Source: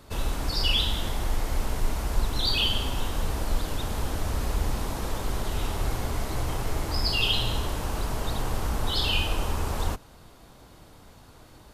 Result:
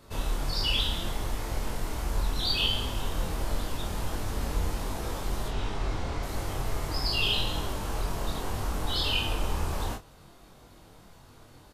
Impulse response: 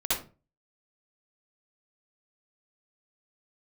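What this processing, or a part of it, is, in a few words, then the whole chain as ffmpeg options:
double-tracked vocal: -filter_complex "[0:a]asettb=1/sr,asplit=3[link_01][link_02][link_03];[link_01]atrim=end=5.484[link_04];[link_02]atrim=start=5.48:end=6.23,asetpts=PTS-STARTPTS,afade=type=in:duration=0.004:curve=qsin,afade=type=out:start_time=0.746:duration=0.004:curve=qsin,lowpass=5600[link_05];[link_03]atrim=start=6.226[link_06];[link_04][link_05]acrossfade=duration=0.004:curve1=hsin:curve2=qsin[link_07];[link_07][link_06]acrossfade=duration=0.004:curve1=qsin:curve2=hsin,asplit=2[link_08][link_09];[link_09]adelay=29,volume=-7dB[link_10];[link_08][link_10]amix=inputs=2:normalize=0,flanger=delay=20:depth=3.3:speed=1.4"

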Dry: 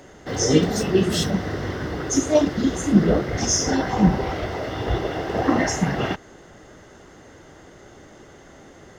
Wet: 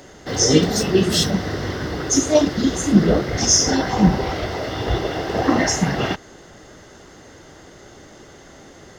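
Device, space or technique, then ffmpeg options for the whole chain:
presence and air boost: -af "equalizer=frequency=4600:width_type=o:width=0.98:gain=5.5,highshelf=frequency=9900:gain=5,volume=2dB"

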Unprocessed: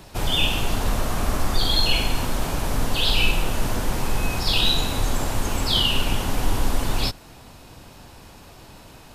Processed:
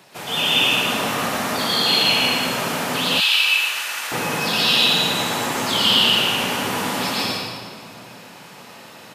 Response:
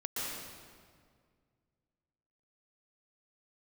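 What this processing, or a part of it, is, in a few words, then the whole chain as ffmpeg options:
PA in a hall: -filter_complex "[0:a]highpass=frequency=160:width=0.5412,highpass=frequency=160:width=1.3066,equalizer=frequency=2100:width_type=o:width=1.3:gain=4.5,aecho=1:1:114:0.631[link_01];[1:a]atrim=start_sample=2205[link_02];[link_01][link_02]afir=irnorm=-1:irlink=0,equalizer=frequency=270:width_type=o:width=0.81:gain=-6,asettb=1/sr,asplit=3[link_03][link_04][link_05];[link_03]atrim=end=3.204[link_06];[link_04]atrim=start=3.2:end=4.12,asetpts=PTS-STARTPTS,afade=type=in:duration=0.004:curve=qsin,afade=type=out:start_time=0.916:duration=0.004:curve=qsin,highpass=1400[link_07];[link_05]atrim=start=4.116[link_08];[link_06][link_07]acrossfade=duration=0.004:curve1=hsin:curve2=qsin[link_09];[link_09][link_08]acrossfade=duration=0.004:curve1=qsin:curve2=hsin"

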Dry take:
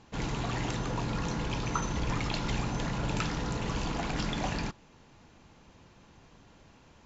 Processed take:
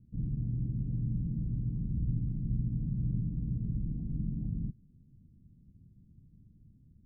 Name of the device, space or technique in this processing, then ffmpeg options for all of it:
the neighbour's flat through the wall: -af "lowpass=frequency=220:width=0.5412,lowpass=frequency=220:width=1.3066,equalizer=frequency=120:width_type=o:width=0.77:gain=3.5"

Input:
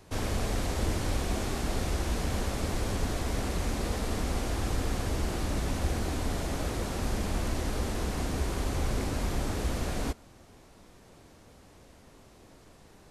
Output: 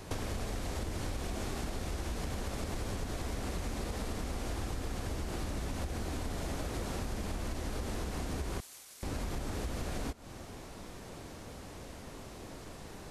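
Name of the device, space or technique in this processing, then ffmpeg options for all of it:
serial compression, peaks first: -filter_complex "[0:a]acompressor=threshold=-37dB:ratio=6,acompressor=threshold=-43dB:ratio=2.5,asettb=1/sr,asplit=3[link_01][link_02][link_03];[link_01]atrim=end=8.604[link_04];[link_02]atrim=start=8.6:end=9.03,asetpts=PTS-STARTPTS,afade=type=in:duration=0.004:curve=qsin,afade=type=out:start_time=0.426:duration=0.004:curve=qsin,aderivative[link_05];[link_03]atrim=start=9.026[link_06];[link_04][link_05]acrossfade=duration=0.004:curve1=hsin:curve2=qsin[link_07];[link_07][link_06]acrossfade=duration=0.004:curve1=qsin:curve2=hsin,volume=8dB"

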